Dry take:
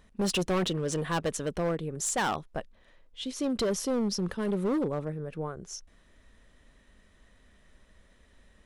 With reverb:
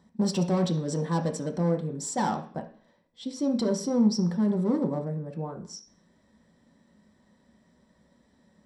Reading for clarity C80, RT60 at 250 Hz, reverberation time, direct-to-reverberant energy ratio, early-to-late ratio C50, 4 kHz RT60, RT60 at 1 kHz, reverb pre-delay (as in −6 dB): 16.0 dB, 0.55 s, 0.45 s, 2.5 dB, 11.0 dB, can't be measured, 0.45 s, 3 ms